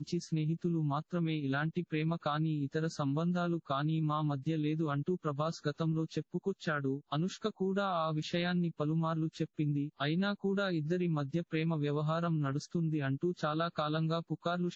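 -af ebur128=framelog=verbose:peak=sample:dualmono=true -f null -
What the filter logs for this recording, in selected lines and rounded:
Integrated loudness:
  I:         -31.3 LUFS
  Threshold: -41.3 LUFS
Loudness range:
  LRA:         1.3 LU
  Threshold: -51.3 LUFS
  LRA low:   -32.1 LUFS
  LRA high:  -30.8 LUFS
Sample peak:
  Peak:      -20.5 dBFS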